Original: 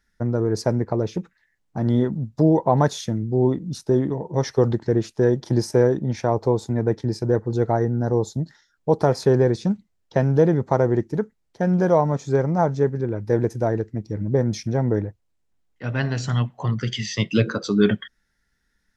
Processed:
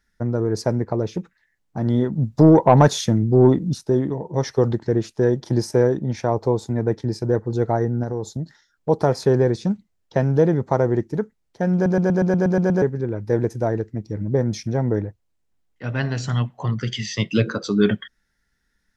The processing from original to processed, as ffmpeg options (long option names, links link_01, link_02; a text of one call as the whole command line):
ffmpeg -i in.wav -filter_complex "[0:a]asplit=3[link_01][link_02][link_03];[link_01]afade=type=out:start_time=2.17:duration=0.02[link_04];[link_02]acontrast=68,afade=type=in:start_time=2.17:duration=0.02,afade=type=out:start_time=3.73:duration=0.02[link_05];[link_03]afade=type=in:start_time=3.73:duration=0.02[link_06];[link_04][link_05][link_06]amix=inputs=3:normalize=0,asettb=1/sr,asplit=3[link_07][link_08][link_09];[link_07]atrim=end=8.034[link_10];[link_08]atrim=start=8.03:end=8.89,asetpts=PTS-STARTPTS,afade=type=in:duration=0.004:curve=qsin,afade=type=out:start_time=0.856:duration=0.004:curve=qsin,acompressor=threshold=-22dB:ratio=3:attack=3.2:release=140:knee=1:detection=peak[link_11];[link_09]atrim=start=8.886[link_12];[link_10][link_11]acrossfade=duration=0.004:curve1=hsin:curve2=qsin[link_13];[link_13][link_12]acrossfade=duration=0.004:curve1=qsin:curve2=hsin,asplit=10[link_14][link_15][link_16][link_17][link_18][link_19][link_20][link_21][link_22][link_23];[link_14]atrim=end=11.862[link_24];[link_15]atrim=start=11.738:end=11.862[link_25];[link_16]atrim=start=11.738:end=11.862[link_26];[link_17]atrim=start=11.738:end=11.862[link_27];[link_18]atrim=start=11.738:end=11.862[link_28];[link_19]atrim=start=11.738:end=11.862[link_29];[link_20]atrim=start=11.738:end=11.862[link_30];[link_21]atrim=start=11.738:end=11.862[link_31];[link_22]atrim=start=11.738:end=11.862[link_32];[link_23]atrim=start=12.818[link_33];[link_24][link_25]acrossfade=duration=0.004:curve1=hsin:curve2=hsin[link_34];[link_34][link_26]acrossfade=duration=0.004:curve1=hsin:curve2=hsin[link_35];[link_35][link_27]acrossfade=duration=0.004:curve1=hsin:curve2=hsin[link_36];[link_36][link_28]acrossfade=duration=0.004:curve1=hsin:curve2=hsin[link_37];[link_37][link_29]acrossfade=duration=0.004:curve1=hsin:curve2=hsin[link_38];[link_38][link_30]acrossfade=duration=0.004:curve1=hsin:curve2=hsin[link_39];[link_39][link_31]acrossfade=duration=0.004:curve1=hsin:curve2=hsin[link_40];[link_40][link_32]acrossfade=duration=0.004:curve1=hsin:curve2=hsin[link_41];[link_41][link_33]acrossfade=duration=0.004:curve1=hsin:curve2=hsin" out.wav